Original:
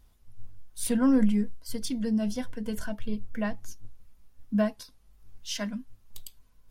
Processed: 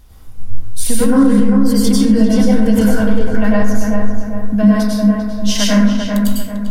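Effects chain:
downward compressor, threshold −29 dBFS, peak gain reduction 12 dB
feedback echo with a low-pass in the loop 395 ms, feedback 44%, low-pass 1,800 Hz, level −4 dB
dense smooth reverb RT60 0.88 s, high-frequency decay 0.45×, pre-delay 85 ms, DRR −6.5 dB
boost into a limiter +15 dB
level −1 dB

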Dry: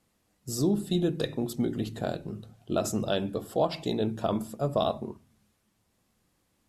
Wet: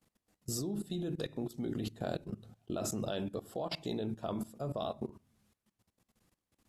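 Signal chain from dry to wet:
output level in coarse steps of 18 dB

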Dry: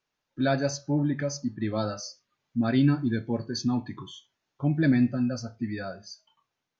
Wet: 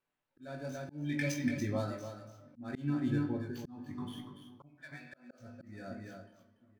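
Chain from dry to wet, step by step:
running median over 9 samples
0:00.92–0:01.32: high shelf with overshoot 1,700 Hz +12.5 dB, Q 3
0:04.65–0:05.39: high-pass filter 1,200 Hz → 290 Hz 24 dB per octave
double-tracking delay 20 ms −5 dB
delay with a low-pass on its return 500 ms, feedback 39%, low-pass 1,600 Hz, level −21.5 dB
on a send at −7 dB: convolution reverb RT60 0.85 s, pre-delay 5 ms
on the sum: amplitude tremolo 0.72 Hz, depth 53%
single-tap delay 287 ms −9.5 dB
volume swells 475 ms
level −4.5 dB

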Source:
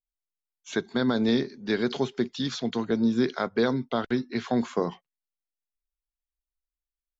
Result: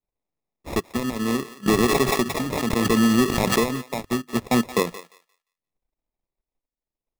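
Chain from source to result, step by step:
mains-hum notches 50/100/150 Hz
in parallel at −2.5 dB: brickwall limiter −24 dBFS, peak gain reduction 11 dB
on the sum: transient designer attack +8 dB, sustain −10 dB
decimation without filtering 29×
hard clipping −12.5 dBFS, distortion −14 dB
shaped tremolo triangle 0.7 Hz, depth 60%
on a send: feedback echo with a high-pass in the loop 175 ms, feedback 21%, high-pass 820 Hz, level −13 dB
0:01.66–0:03.78: on the sum: background raised ahead of every attack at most 22 dB per second
level +1 dB

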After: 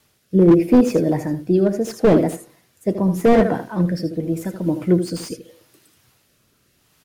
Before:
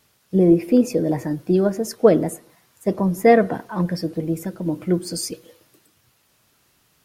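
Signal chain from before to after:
single-tap delay 79 ms −11 dB
rotating-speaker cabinet horn 0.8 Hz
slew-rate limiting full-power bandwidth 89 Hz
level +4 dB

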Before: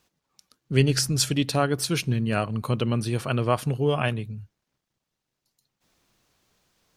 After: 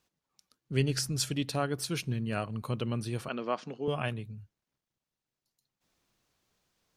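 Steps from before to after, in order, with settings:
0:03.28–0:03.88: elliptic band-pass filter 200–6,000 Hz, stop band 40 dB
level −8 dB

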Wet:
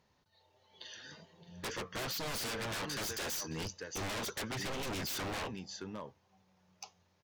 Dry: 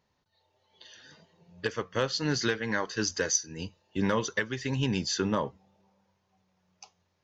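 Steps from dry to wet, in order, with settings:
single-tap delay 618 ms −17.5 dB
harmonic generator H 5 −7 dB, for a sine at −14 dBFS
wave folding −25.5 dBFS
level −8 dB

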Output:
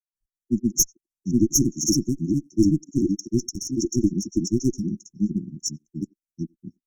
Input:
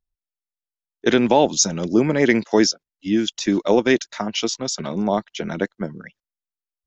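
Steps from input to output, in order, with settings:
granular cloud, grains 16 per second, spray 937 ms, pitch spread up and down by 0 semitones
far-end echo of a speakerphone 90 ms, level −28 dB
asymmetric clip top −21.5 dBFS
linear-phase brick-wall band-stop 370–5,400 Hz
level +4 dB

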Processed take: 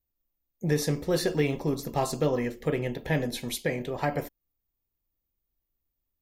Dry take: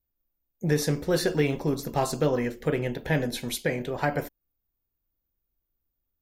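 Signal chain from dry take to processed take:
notch filter 1,500 Hz, Q 7.7
level −1.5 dB

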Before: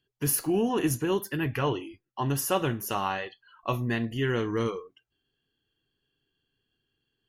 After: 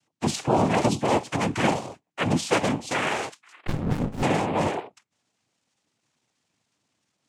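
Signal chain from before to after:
cochlear-implant simulation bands 4
0:03.67–0:04.23: windowed peak hold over 65 samples
level +4.5 dB

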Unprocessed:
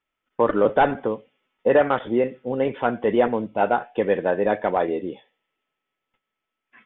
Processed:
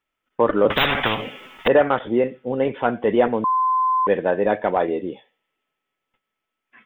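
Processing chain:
0:00.70–0:01.68: every bin compressed towards the loudest bin 10 to 1
0:03.44–0:04.07: beep over 1,030 Hz −17.5 dBFS
level +1.5 dB

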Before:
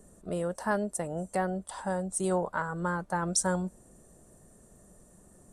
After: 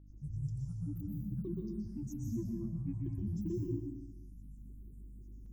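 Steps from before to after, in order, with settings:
inverse Chebyshev band-stop filter 350–8,100 Hz, stop band 40 dB
granular cloud, pitch spread up and down by 12 semitones
hum with harmonics 50 Hz, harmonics 6, −56 dBFS −7 dB per octave
dense smooth reverb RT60 0.93 s, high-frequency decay 0.95×, pre-delay 110 ms, DRR −0.5 dB

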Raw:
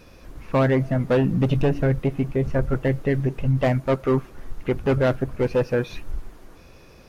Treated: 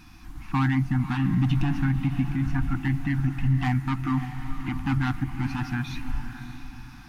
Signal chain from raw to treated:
feedback delay with all-pass diffusion 582 ms, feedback 44%, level −11 dB
brickwall limiter −15 dBFS, peak gain reduction 4.5 dB
brick-wall band-stop 340–710 Hz

